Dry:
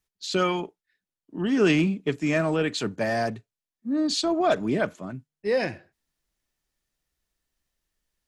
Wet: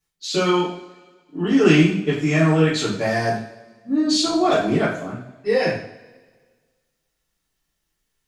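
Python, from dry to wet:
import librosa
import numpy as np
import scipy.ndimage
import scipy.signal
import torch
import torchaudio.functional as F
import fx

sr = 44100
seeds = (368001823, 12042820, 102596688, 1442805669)

y = fx.rev_double_slope(x, sr, seeds[0], early_s=0.49, late_s=1.6, knee_db=-18, drr_db=-8.0)
y = y * 10.0 ** (-2.5 / 20.0)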